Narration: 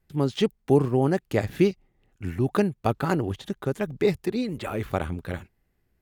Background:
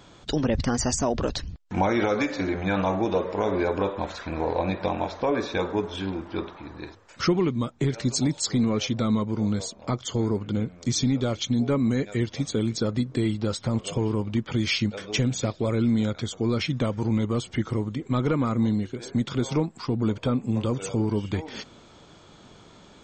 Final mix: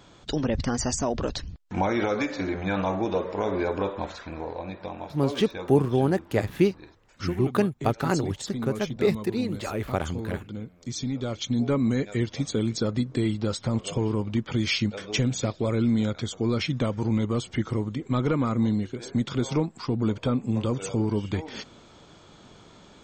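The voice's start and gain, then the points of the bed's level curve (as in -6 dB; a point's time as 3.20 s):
5.00 s, -0.5 dB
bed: 4.06 s -2 dB
4.58 s -9.5 dB
10.80 s -9.5 dB
11.65 s -0.5 dB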